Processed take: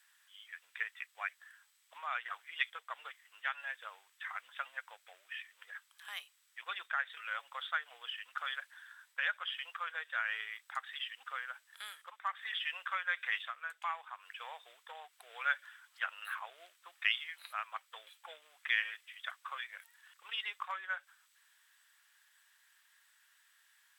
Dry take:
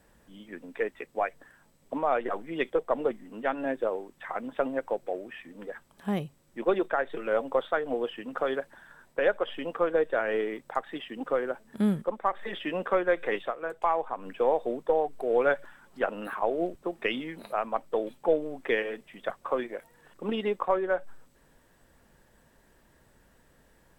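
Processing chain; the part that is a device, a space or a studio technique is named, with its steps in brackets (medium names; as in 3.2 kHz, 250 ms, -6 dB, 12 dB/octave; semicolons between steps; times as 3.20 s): headphones lying on a table (high-pass 1.4 kHz 24 dB/octave; peaking EQ 3.4 kHz +4 dB 0.43 oct)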